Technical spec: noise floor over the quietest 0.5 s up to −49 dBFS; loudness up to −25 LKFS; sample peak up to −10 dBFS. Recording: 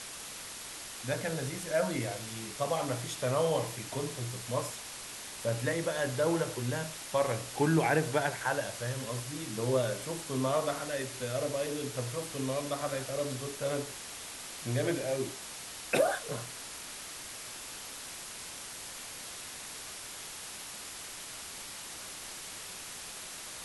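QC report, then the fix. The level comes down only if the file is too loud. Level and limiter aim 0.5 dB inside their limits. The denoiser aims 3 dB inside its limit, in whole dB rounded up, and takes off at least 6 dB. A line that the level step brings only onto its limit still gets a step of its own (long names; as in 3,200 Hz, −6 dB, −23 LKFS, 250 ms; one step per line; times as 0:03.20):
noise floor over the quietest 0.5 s −44 dBFS: out of spec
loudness −34.5 LKFS: in spec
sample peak −14.5 dBFS: in spec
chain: broadband denoise 8 dB, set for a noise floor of −44 dBFS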